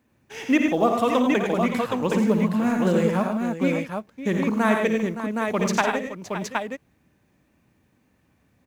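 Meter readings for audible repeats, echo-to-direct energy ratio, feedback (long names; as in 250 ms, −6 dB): 5, 0.0 dB, repeats not evenly spaced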